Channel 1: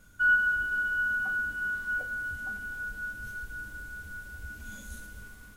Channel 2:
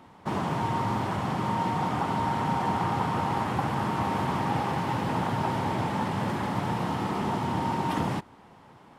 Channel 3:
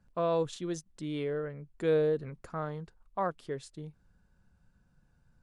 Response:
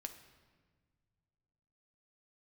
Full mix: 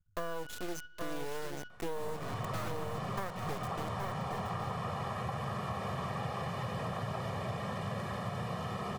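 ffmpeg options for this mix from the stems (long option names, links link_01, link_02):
-filter_complex "[0:a]aeval=exprs='max(val(0),0)':channel_layout=same,equalizer=frequency=100:width_type=o:width=0.77:gain=14.5,afwtdn=0.00562,volume=-17dB,asplit=2[link_01][link_02];[link_02]volume=-7dB[link_03];[1:a]aecho=1:1:1.7:0.89,adelay=1700,volume=-8.5dB[link_04];[2:a]aeval=exprs='max(val(0),0)':channel_layout=same,acrusher=bits=6:mix=0:aa=0.000001,volume=3dB,asplit=4[link_05][link_06][link_07][link_08];[link_06]volume=-23dB[link_09];[link_07]volume=-9dB[link_10];[link_08]apad=whole_len=245365[link_11];[link_01][link_11]sidechaingate=range=-33dB:threshold=-45dB:ratio=16:detection=peak[link_12];[3:a]atrim=start_sample=2205[link_13];[link_03][link_09]amix=inputs=2:normalize=0[link_14];[link_14][link_13]afir=irnorm=-1:irlink=0[link_15];[link_10]aecho=0:1:821:1[link_16];[link_12][link_04][link_05][link_15][link_16]amix=inputs=5:normalize=0,acompressor=threshold=-32dB:ratio=12"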